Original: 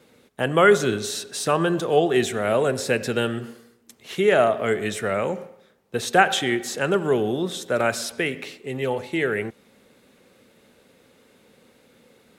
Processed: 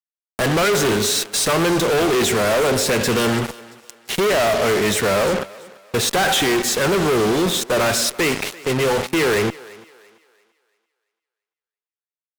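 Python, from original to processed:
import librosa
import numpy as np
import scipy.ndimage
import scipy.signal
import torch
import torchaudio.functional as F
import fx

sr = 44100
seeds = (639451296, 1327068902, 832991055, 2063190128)

y = fx.fuzz(x, sr, gain_db=39.0, gate_db=-35.0)
y = fx.echo_thinned(y, sr, ms=339, feedback_pct=36, hz=320.0, wet_db=-20.0)
y = F.gain(torch.from_numpy(y), -2.5).numpy()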